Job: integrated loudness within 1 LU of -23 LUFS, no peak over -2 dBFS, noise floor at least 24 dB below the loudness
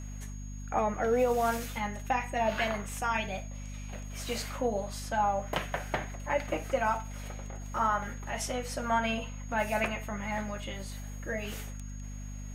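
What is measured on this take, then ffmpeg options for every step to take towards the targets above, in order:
hum 50 Hz; highest harmonic 250 Hz; hum level -38 dBFS; steady tone 6.6 kHz; tone level -52 dBFS; loudness -32.5 LUFS; peak level -16.0 dBFS; loudness target -23.0 LUFS
-> -af "bandreject=f=50:t=h:w=6,bandreject=f=100:t=h:w=6,bandreject=f=150:t=h:w=6,bandreject=f=200:t=h:w=6,bandreject=f=250:t=h:w=6"
-af "bandreject=f=6600:w=30"
-af "volume=2.99"

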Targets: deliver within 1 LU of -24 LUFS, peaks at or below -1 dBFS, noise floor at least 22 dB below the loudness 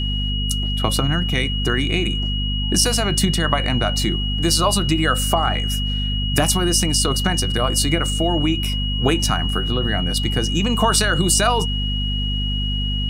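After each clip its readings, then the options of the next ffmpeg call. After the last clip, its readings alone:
hum 50 Hz; highest harmonic 250 Hz; hum level -20 dBFS; steady tone 2.9 kHz; tone level -25 dBFS; loudness -19.5 LUFS; peak level -3.0 dBFS; loudness target -24.0 LUFS
-> -af "bandreject=f=50:t=h:w=4,bandreject=f=100:t=h:w=4,bandreject=f=150:t=h:w=4,bandreject=f=200:t=h:w=4,bandreject=f=250:t=h:w=4"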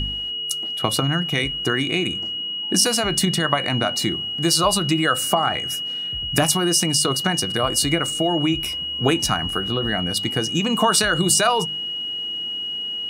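hum not found; steady tone 2.9 kHz; tone level -25 dBFS
-> -af "bandreject=f=2900:w=30"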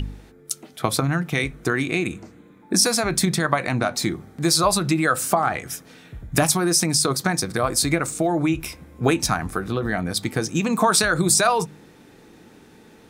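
steady tone not found; loudness -21.5 LUFS; peak level -4.0 dBFS; loudness target -24.0 LUFS
-> -af "volume=0.75"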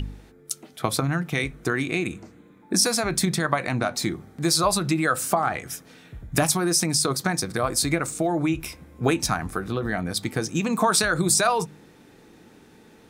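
loudness -24.0 LUFS; peak level -6.5 dBFS; noise floor -52 dBFS

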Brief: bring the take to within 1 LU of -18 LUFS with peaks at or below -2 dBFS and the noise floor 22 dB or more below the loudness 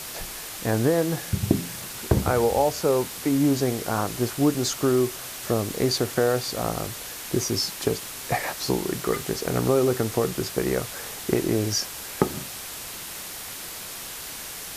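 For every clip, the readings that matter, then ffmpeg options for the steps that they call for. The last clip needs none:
noise floor -37 dBFS; noise floor target -48 dBFS; loudness -25.5 LUFS; peak level -4.5 dBFS; loudness target -18.0 LUFS
-> -af "afftdn=nr=11:nf=-37"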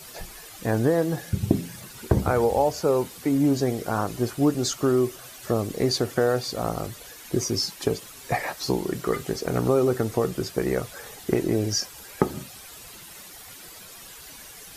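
noise floor -44 dBFS; noise floor target -48 dBFS
-> -af "afftdn=nr=6:nf=-44"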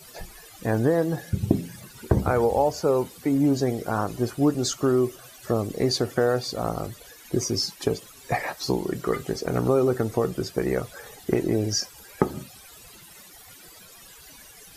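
noise floor -48 dBFS; loudness -25.5 LUFS; peak level -5.0 dBFS; loudness target -18.0 LUFS
-> -af "volume=2.37,alimiter=limit=0.794:level=0:latency=1"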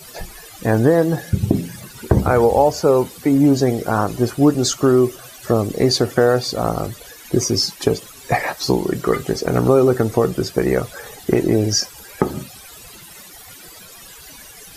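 loudness -18.0 LUFS; peak level -2.0 dBFS; noise floor -41 dBFS

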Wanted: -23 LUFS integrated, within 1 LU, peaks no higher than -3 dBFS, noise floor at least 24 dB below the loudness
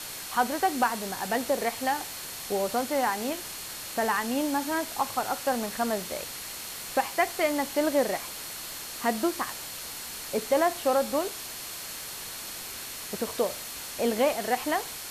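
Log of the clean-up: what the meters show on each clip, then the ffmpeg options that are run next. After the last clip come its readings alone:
steady tone 4.3 kHz; tone level -48 dBFS; noise floor -39 dBFS; noise floor target -53 dBFS; loudness -29.0 LUFS; peak level -12.0 dBFS; loudness target -23.0 LUFS
-> -af "bandreject=f=4300:w=30"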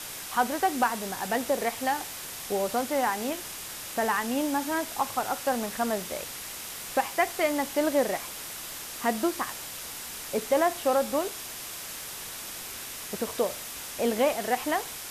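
steady tone not found; noise floor -39 dBFS; noise floor target -54 dBFS
-> -af "afftdn=nr=15:nf=-39"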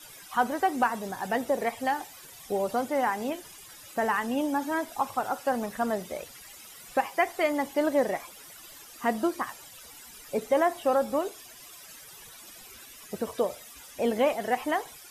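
noise floor -49 dBFS; noise floor target -53 dBFS
-> -af "afftdn=nr=6:nf=-49"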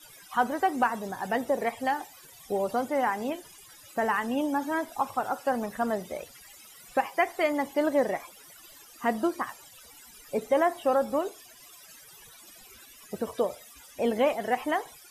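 noise floor -52 dBFS; noise floor target -53 dBFS
-> -af "afftdn=nr=6:nf=-52"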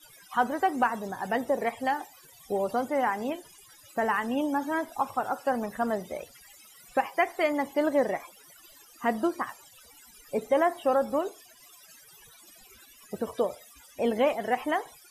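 noise floor -55 dBFS; loudness -29.0 LUFS; peak level -12.0 dBFS; loudness target -23.0 LUFS
-> -af "volume=2"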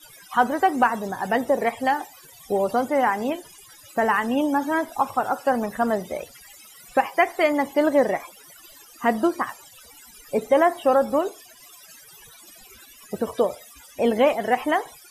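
loudness -23.0 LUFS; peak level -6.0 dBFS; noise floor -49 dBFS

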